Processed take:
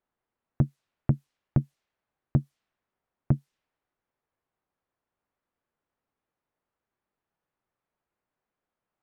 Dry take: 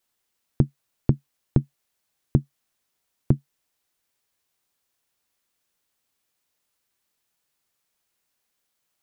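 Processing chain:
low-pass that shuts in the quiet parts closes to 1,300 Hz, open at −22 dBFS
soft clipping −11 dBFS, distortion −10 dB

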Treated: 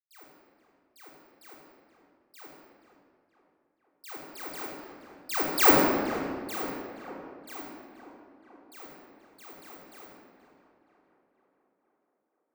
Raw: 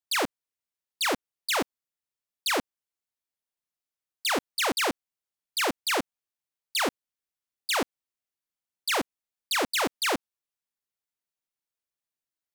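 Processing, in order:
source passing by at 0:05.73, 17 m/s, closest 1.5 metres
parametric band 3,300 Hz −9 dB 0.93 octaves
bad sample-rate conversion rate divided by 2×, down filtered, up zero stuff
tape delay 475 ms, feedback 66%, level −12 dB, low-pass 2,400 Hz
rectangular room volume 2,400 cubic metres, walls mixed, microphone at 3.7 metres
level +5 dB

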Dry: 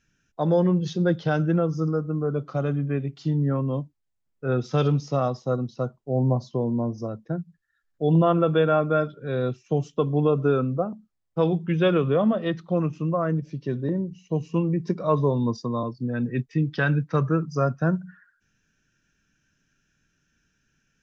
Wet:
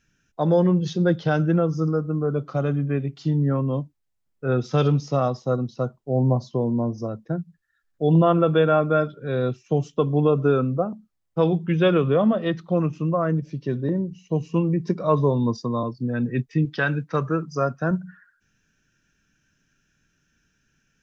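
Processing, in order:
0:16.65–0:17.91: low-shelf EQ 180 Hz −9.5 dB
level +2 dB

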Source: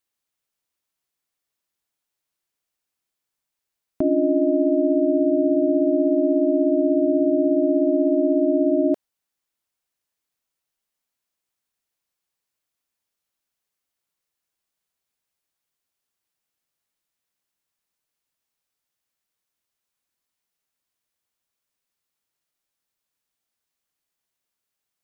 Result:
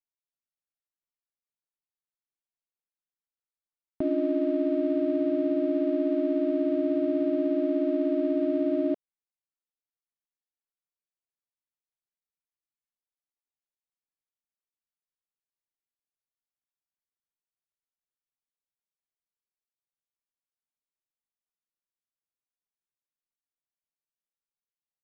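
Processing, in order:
gap after every zero crossing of 0.11 ms
high-frequency loss of the air 430 metres
level −6 dB

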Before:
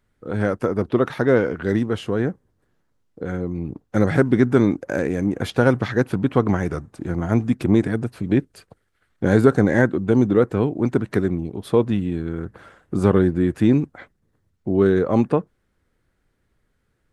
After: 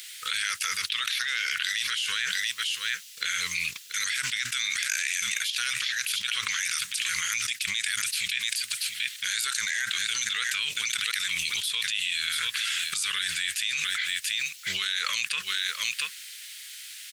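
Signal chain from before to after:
inverse Chebyshev high-pass filter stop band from 800 Hz, stop band 60 dB
single-tap delay 684 ms −18 dB
envelope flattener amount 100%
level +2 dB

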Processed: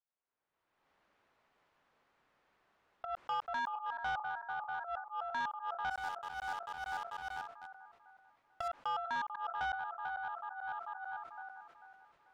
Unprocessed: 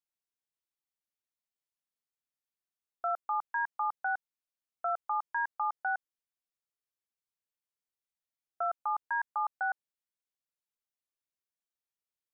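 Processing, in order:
feedback delay that plays each chunk backwards 221 ms, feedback 56%, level −10.5 dB
camcorder AGC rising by 33 dB per second
low-pass filter 1,300 Hz 12 dB per octave
low-shelf EQ 440 Hz −10.5 dB
0:05.90–0:08.68: leveller curve on the samples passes 2
volume swells 159 ms
soft clipping −34 dBFS, distortion −13 dB
level that may fall only so fast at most 98 dB per second
level +3 dB

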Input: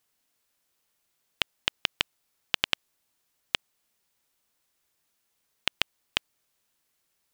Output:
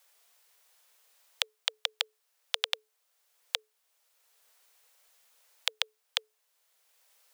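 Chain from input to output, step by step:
frequency shifter +430 Hz
multiband upward and downward compressor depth 40%
level −2.5 dB

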